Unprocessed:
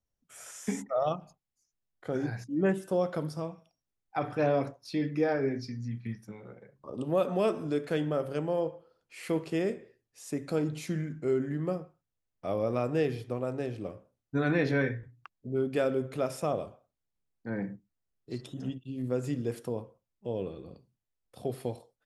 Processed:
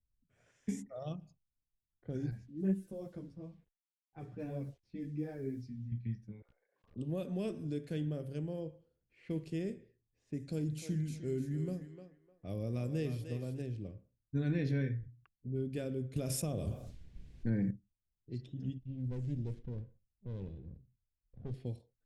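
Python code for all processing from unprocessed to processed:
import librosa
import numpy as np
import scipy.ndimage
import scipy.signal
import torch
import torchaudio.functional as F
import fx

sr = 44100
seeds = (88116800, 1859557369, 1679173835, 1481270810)

y = fx.chain(x, sr, fx.peak_eq(hz=4200.0, db=-9.5, octaves=1.7),
    fx.quant_dither(seeds[0], bits=10, dither='none'),
    fx.ensemble(), at=(2.31, 5.92))
y = fx.chain(y, sr, fx.highpass(hz=770.0, slope=24),
    fx.overflow_wrap(gain_db=46.5),
    fx.pre_swell(db_per_s=81.0), at=(6.42, 6.96))
y = fx.chain(y, sr, fx.high_shelf(hz=6300.0, db=9.5),
    fx.echo_thinned(ms=303, feedback_pct=34, hz=600.0, wet_db=-5.5), at=(10.4, 13.62))
y = fx.chain(y, sr, fx.high_shelf(hz=6500.0, db=9.0),
    fx.transient(attack_db=3, sustain_db=-2),
    fx.env_flatten(amount_pct=70), at=(16.16, 17.71))
y = fx.chain(y, sr, fx.low_shelf(hz=100.0, db=9.5),
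    fx.tube_stage(drive_db=22.0, bias=0.55),
    fx.running_max(window=17), at=(18.8, 21.54))
y = fx.env_lowpass(y, sr, base_hz=1100.0, full_db=-29.0)
y = fx.tone_stack(y, sr, knobs='10-0-1')
y = fx.notch(y, sr, hz=1300.0, q=8.8)
y = y * librosa.db_to_amplitude(12.5)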